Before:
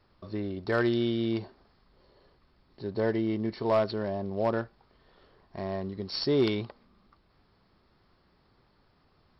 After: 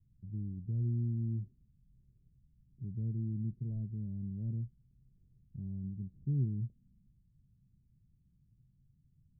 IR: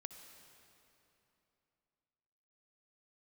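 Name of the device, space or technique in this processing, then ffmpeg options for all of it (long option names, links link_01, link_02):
the neighbour's flat through the wall: -af "lowpass=frequency=180:width=0.5412,lowpass=frequency=180:width=1.3066,equalizer=frequency=130:width_type=o:width=0.48:gain=7.5,volume=-1dB"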